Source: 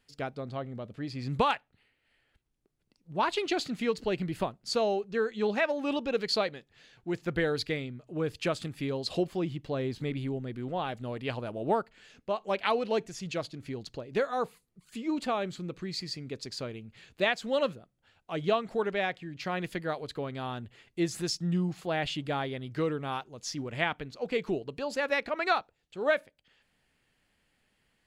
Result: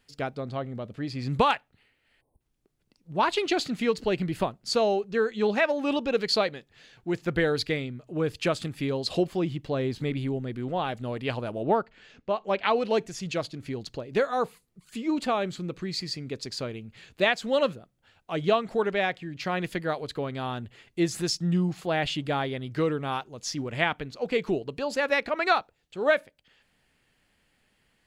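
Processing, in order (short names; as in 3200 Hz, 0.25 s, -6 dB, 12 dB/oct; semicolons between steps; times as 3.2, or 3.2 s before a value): 2.21–2.41 spectral delete 1100–8200 Hz; 11.63–12.76 air absorption 100 m; gain +4 dB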